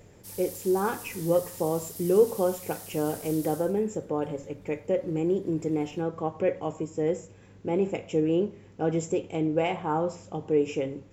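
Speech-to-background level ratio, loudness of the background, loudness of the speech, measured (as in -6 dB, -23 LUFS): 12.5 dB, -41.0 LUFS, -28.5 LUFS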